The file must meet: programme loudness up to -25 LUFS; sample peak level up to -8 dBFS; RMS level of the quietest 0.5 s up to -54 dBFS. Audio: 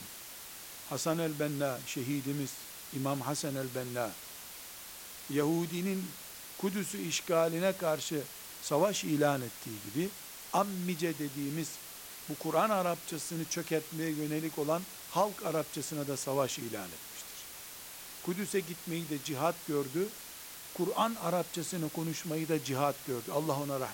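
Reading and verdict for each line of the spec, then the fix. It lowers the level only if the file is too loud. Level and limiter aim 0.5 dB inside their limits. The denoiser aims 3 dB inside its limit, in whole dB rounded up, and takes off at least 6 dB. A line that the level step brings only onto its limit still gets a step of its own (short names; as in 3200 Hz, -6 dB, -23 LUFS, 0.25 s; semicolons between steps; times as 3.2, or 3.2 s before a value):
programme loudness -35.0 LUFS: OK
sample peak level -15.5 dBFS: OK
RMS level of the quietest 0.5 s -48 dBFS: fail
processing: denoiser 9 dB, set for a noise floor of -48 dBFS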